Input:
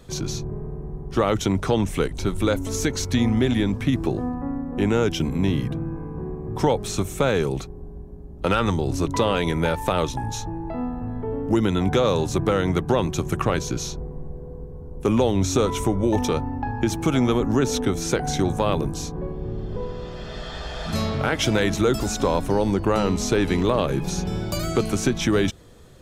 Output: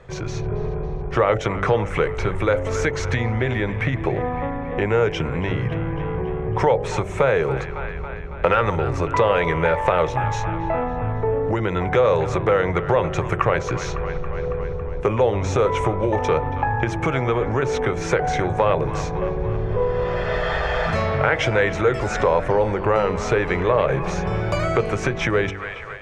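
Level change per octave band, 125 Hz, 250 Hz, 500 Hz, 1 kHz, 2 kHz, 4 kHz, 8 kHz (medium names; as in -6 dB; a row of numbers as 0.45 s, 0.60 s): +1.5 dB, -4.5 dB, +4.0 dB, +5.5 dB, +6.5 dB, -4.0 dB, -7.5 dB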